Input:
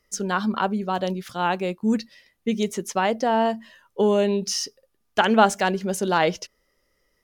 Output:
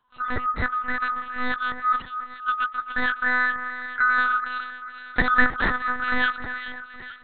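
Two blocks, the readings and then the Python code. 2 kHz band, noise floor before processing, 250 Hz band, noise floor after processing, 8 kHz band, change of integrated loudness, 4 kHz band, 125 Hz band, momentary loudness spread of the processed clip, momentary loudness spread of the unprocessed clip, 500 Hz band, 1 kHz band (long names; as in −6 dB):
+9.0 dB, −71 dBFS, −10.5 dB, −42 dBFS, below −40 dB, −1.0 dB, −6.0 dB, −7.5 dB, 12 LU, 11 LU, −16.0 dB, −0.5 dB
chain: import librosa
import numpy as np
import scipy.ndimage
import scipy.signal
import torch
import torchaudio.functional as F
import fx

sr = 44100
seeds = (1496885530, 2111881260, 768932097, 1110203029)

y = fx.band_swap(x, sr, width_hz=1000)
y = fx.echo_split(y, sr, split_hz=1900.0, low_ms=273, high_ms=430, feedback_pct=52, wet_db=-10)
y = fx.lpc_monotone(y, sr, seeds[0], pitch_hz=250.0, order=8)
y = F.gain(torch.from_numpy(y), -1.5).numpy()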